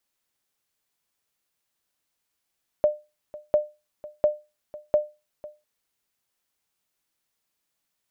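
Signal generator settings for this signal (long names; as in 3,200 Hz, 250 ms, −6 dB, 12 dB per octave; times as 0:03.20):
ping with an echo 600 Hz, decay 0.26 s, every 0.70 s, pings 4, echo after 0.50 s, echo −19.5 dB −11.5 dBFS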